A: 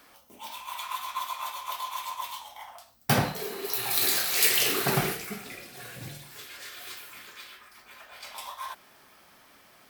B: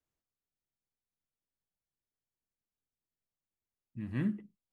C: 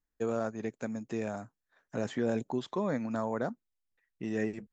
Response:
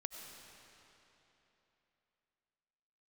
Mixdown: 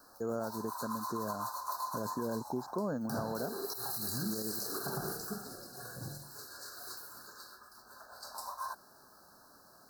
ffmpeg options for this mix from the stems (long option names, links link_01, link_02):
-filter_complex "[0:a]acompressor=threshold=-29dB:ratio=4,volume=-2dB[link_01];[1:a]volume=-1.5dB[link_02];[2:a]volume=-1dB[link_03];[link_01][link_02][link_03]amix=inputs=3:normalize=0,asuperstop=centerf=2600:order=20:qfactor=1.1,alimiter=level_in=2.5dB:limit=-24dB:level=0:latency=1:release=104,volume=-2.5dB"